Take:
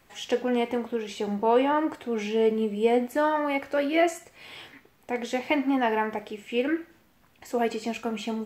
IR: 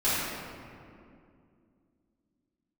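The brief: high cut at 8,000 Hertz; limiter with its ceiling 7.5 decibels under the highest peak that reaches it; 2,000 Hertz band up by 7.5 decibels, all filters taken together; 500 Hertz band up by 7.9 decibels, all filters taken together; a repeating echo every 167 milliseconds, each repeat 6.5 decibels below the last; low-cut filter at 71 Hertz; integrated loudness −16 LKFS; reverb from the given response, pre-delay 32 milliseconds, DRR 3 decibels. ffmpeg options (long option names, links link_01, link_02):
-filter_complex "[0:a]highpass=71,lowpass=8000,equalizer=frequency=500:width_type=o:gain=8.5,equalizer=frequency=2000:width_type=o:gain=8.5,alimiter=limit=-11dB:level=0:latency=1,aecho=1:1:167|334|501|668|835|1002:0.473|0.222|0.105|0.0491|0.0231|0.0109,asplit=2[link_01][link_02];[1:a]atrim=start_sample=2205,adelay=32[link_03];[link_02][link_03]afir=irnorm=-1:irlink=0,volume=-16.5dB[link_04];[link_01][link_04]amix=inputs=2:normalize=0,volume=4dB"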